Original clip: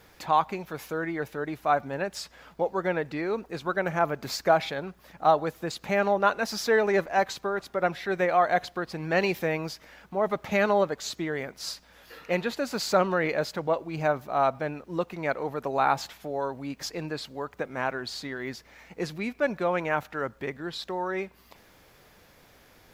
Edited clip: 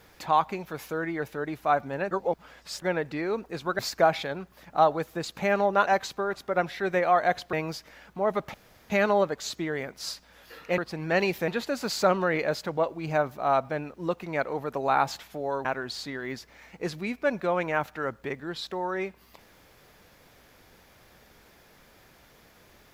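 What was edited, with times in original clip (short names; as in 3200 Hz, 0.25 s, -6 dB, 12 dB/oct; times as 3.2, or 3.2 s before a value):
2.11–2.82 reverse
3.79–4.26 cut
6.34–7.13 cut
8.79–9.49 move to 12.38
10.5 insert room tone 0.36 s
16.55–17.82 cut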